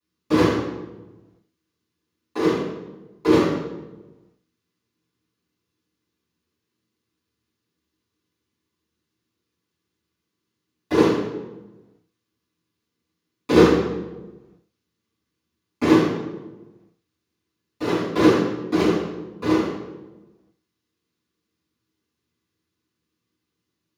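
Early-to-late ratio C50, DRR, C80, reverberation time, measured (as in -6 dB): 0.5 dB, -14.5 dB, 4.5 dB, 1.2 s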